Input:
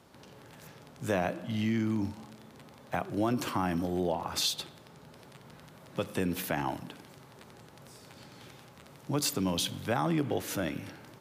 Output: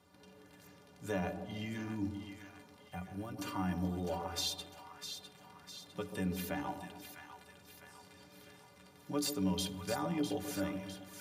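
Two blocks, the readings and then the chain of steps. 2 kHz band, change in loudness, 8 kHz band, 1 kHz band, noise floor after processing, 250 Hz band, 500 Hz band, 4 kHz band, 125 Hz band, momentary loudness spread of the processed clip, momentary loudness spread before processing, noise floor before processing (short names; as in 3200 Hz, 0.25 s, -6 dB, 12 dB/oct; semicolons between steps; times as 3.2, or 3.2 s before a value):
-7.0 dB, -7.0 dB, -6.5 dB, -7.5 dB, -60 dBFS, -5.5 dB, -7.0 dB, -6.0 dB, -5.5 dB, 21 LU, 21 LU, -54 dBFS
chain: metallic resonator 87 Hz, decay 0.21 s, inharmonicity 0.03; spectral gain 2.88–3.38, 230–8000 Hz -8 dB; split-band echo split 900 Hz, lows 0.137 s, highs 0.654 s, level -8 dB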